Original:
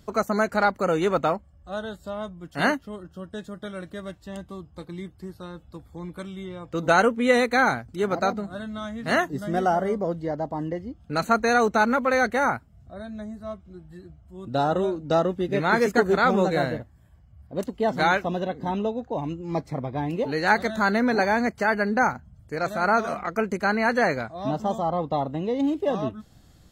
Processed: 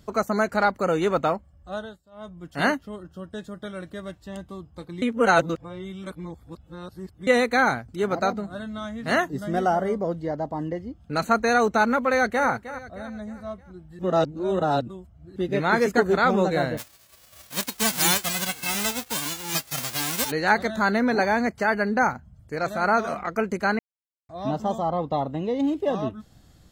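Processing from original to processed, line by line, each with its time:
1.75–2.38 dip -22 dB, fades 0.27 s
5.02–7.27 reverse
12.06–12.47 echo throw 0.31 s, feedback 45%, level -13.5 dB
13.99–15.36 reverse
16.77–20.3 spectral whitening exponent 0.1
23.79–24.29 mute

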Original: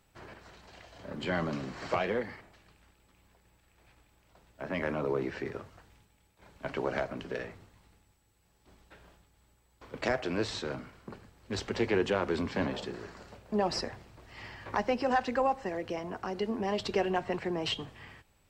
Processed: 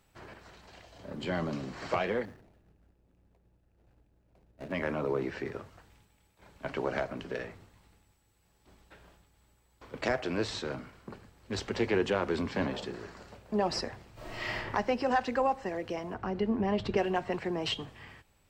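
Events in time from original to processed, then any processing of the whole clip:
0.8–1.73 bell 1600 Hz -4 dB 1.6 oct
2.25–4.72 median filter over 41 samples
14.13–14.56 reverb throw, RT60 0.87 s, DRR -11.5 dB
16.14–16.97 tone controls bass +8 dB, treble -12 dB

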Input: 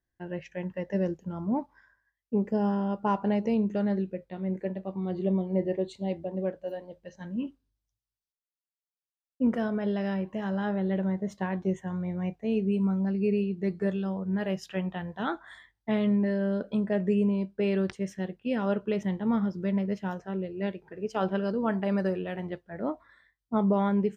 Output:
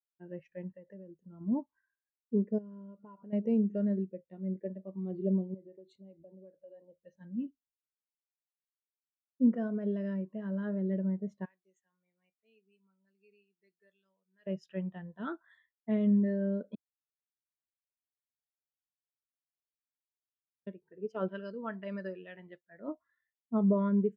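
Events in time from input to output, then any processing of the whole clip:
0.72–1.41 compressor 5:1, threshold -37 dBFS
2.58–3.33 compressor 10:1, threshold -36 dBFS
5.54–7.03 compressor, threshold -39 dBFS
11.45–14.47 differentiator
16.75–20.67 room tone
21.28–22.88 tilt shelf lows -7 dB, about 1100 Hz
whole clip: HPF 130 Hz 6 dB/oct; notch 800 Hz, Q 5.1; spectral expander 1.5:1

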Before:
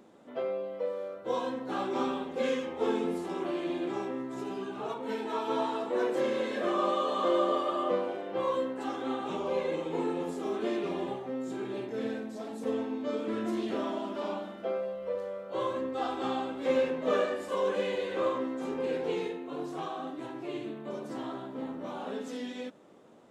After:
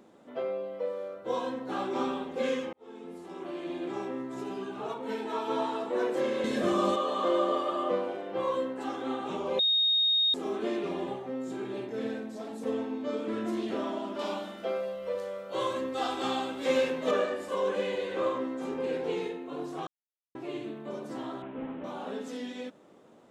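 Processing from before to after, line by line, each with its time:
2.73–4.14 fade in
6.44–6.96 tone controls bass +15 dB, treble +10 dB
9.59–10.34 bleep 3720 Hz -22 dBFS
14.19–17.11 high shelf 2500 Hz +11 dB
19.87–20.35 mute
21.42–21.84 delta modulation 16 kbps, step -48.5 dBFS

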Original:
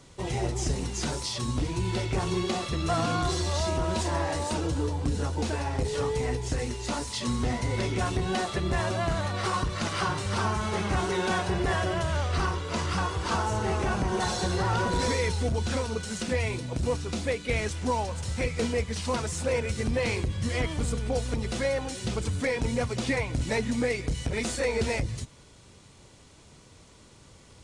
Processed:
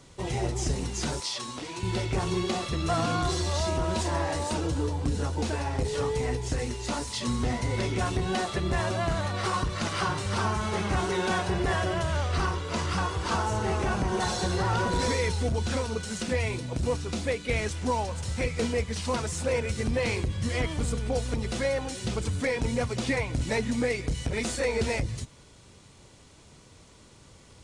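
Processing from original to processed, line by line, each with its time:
1.2–1.83 weighting filter A

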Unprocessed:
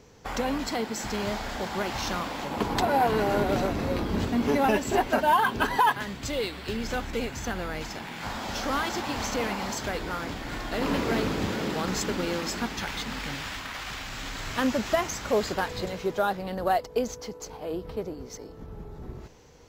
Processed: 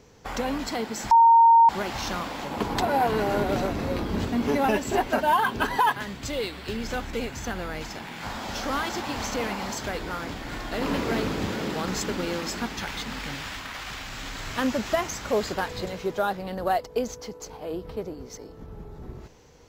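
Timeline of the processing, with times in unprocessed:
1.11–1.69 bleep 921 Hz -11.5 dBFS

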